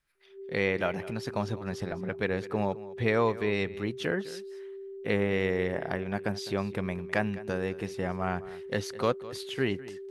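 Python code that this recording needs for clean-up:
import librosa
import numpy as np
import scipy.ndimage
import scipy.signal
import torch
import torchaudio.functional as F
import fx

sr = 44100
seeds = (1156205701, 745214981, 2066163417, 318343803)

y = fx.notch(x, sr, hz=390.0, q=30.0)
y = fx.fix_echo_inverse(y, sr, delay_ms=206, level_db=-17.5)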